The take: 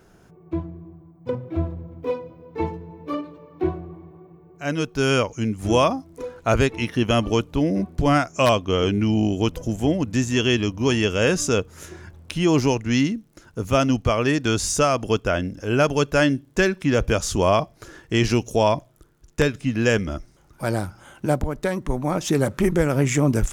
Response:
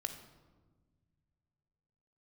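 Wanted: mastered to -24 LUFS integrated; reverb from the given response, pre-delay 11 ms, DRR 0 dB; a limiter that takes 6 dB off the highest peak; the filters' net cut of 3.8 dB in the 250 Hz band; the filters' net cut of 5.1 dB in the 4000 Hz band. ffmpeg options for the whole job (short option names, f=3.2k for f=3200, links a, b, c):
-filter_complex "[0:a]equalizer=f=250:t=o:g=-5,equalizer=f=4k:t=o:g=-7.5,alimiter=limit=-14dB:level=0:latency=1,asplit=2[a][b];[1:a]atrim=start_sample=2205,adelay=11[c];[b][c]afir=irnorm=-1:irlink=0,volume=0.5dB[d];[a][d]amix=inputs=2:normalize=0,volume=-0.5dB"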